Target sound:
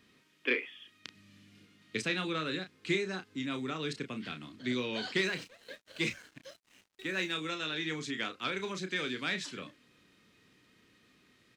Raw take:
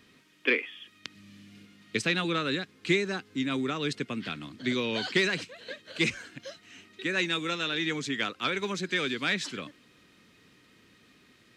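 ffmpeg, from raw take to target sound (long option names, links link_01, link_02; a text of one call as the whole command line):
ffmpeg -i in.wav -filter_complex "[0:a]asplit=2[link_01][link_02];[link_02]adelay=32,volume=-8dB[link_03];[link_01][link_03]amix=inputs=2:normalize=0,asettb=1/sr,asplit=3[link_04][link_05][link_06];[link_04]atrim=end=5.244[link_07];[link_05]atrim=start=5.24:end=7.33,asetpts=PTS-STARTPTS,afade=type=in:duration=0.004:curve=qsin,afade=type=out:start_time=2.086:duration=0.004:curve=qsin,aeval=exprs='sgn(val(0))*max(abs(val(0))-0.00299,0)':channel_layout=same[link_08];[link_06]atrim=start=7.326[link_09];[link_07][link_08]acrossfade=duration=0.004:curve1=hsin:curve2=qsin[link_10];[link_10][link_09]acrossfade=duration=0.004:curve1=qsin:curve2=hsin,volume=-6dB" out.wav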